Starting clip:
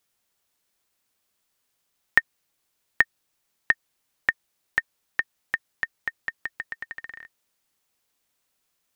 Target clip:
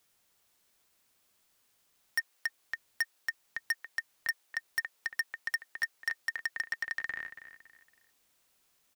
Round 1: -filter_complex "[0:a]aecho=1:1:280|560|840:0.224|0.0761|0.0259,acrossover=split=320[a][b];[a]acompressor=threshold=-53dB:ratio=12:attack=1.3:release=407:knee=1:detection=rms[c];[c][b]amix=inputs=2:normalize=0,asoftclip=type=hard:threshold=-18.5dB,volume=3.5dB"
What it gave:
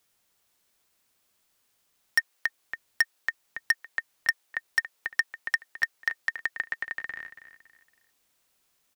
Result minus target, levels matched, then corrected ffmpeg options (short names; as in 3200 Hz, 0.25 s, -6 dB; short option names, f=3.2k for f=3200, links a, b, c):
hard clip: distortion -5 dB
-filter_complex "[0:a]aecho=1:1:280|560|840:0.224|0.0761|0.0259,acrossover=split=320[a][b];[a]acompressor=threshold=-53dB:ratio=12:attack=1.3:release=407:knee=1:detection=rms[c];[c][b]amix=inputs=2:normalize=0,asoftclip=type=hard:threshold=-28.5dB,volume=3.5dB"